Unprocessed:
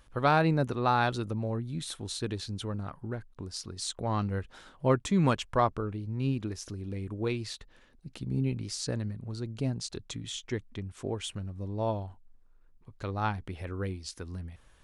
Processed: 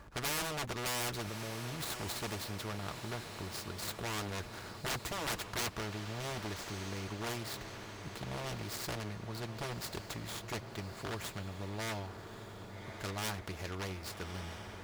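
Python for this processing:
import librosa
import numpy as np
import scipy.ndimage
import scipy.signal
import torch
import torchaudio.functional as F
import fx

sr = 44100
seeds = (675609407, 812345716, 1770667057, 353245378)

y = scipy.ndimage.median_filter(x, 15, mode='constant')
y = scipy.signal.sosfilt(scipy.signal.butter(2, 53.0, 'highpass', fs=sr, output='sos'), y)
y = fx.low_shelf(y, sr, hz=70.0, db=10.0)
y = fx.over_compress(y, sr, threshold_db=-36.0, ratio=-1.0, at=(1.21, 2.1), fade=0.02)
y = 10.0 ** (-28.0 / 20.0) * (np.abs((y / 10.0 ** (-28.0 / 20.0) + 3.0) % 4.0 - 2.0) - 1.0)
y = fx.notch_comb(y, sr, f0_hz=260.0)
y = fx.echo_diffused(y, sr, ms=1201, feedback_pct=54, wet_db=-15.5)
y = fx.spectral_comp(y, sr, ratio=2.0)
y = y * 10.0 ** (4.5 / 20.0)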